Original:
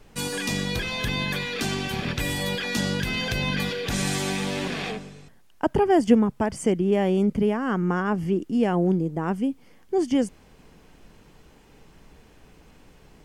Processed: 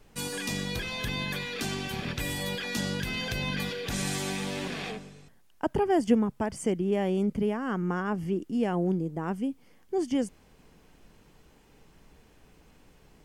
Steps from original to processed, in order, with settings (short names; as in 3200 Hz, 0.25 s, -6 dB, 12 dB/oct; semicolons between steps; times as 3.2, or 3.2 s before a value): high shelf 8700 Hz +4 dB; gain -5.5 dB